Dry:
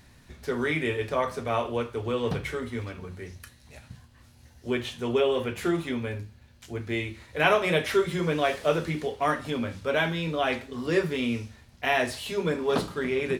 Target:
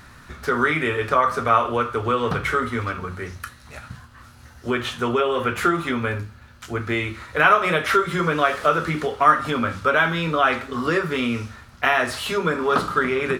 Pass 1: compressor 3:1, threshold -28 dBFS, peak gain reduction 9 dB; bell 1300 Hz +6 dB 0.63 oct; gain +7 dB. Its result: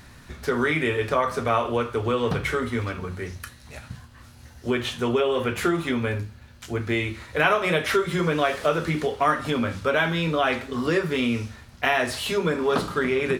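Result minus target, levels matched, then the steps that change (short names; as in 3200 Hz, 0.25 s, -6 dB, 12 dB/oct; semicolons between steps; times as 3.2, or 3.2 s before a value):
1000 Hz band -3.5 dB
change: bell 1300 Hz +15.5 dB 0.63 oct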